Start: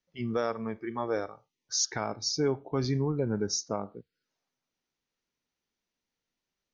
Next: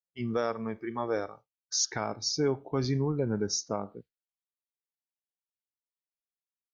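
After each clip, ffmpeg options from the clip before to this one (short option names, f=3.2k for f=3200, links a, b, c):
-af "agate=range=-33dB:threshold=-45dB:ratio=3:detection=peak"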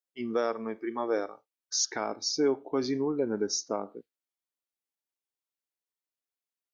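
-af "lowshelf=f=190:t=q:w=1.5:g=-13"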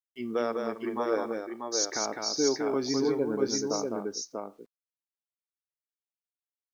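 -af "acrusher=bits=10:mix=0:aa=0.000001,aecho=1:1:206|640:0.596|0.631,volume=-1dB"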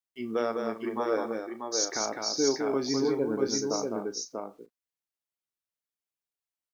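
-filter_complex "[0:a]asplit=2[a][b];[b]adelay=36,volume=-12.5dB[c];[a][c]amix=inputs=2:normalize=0"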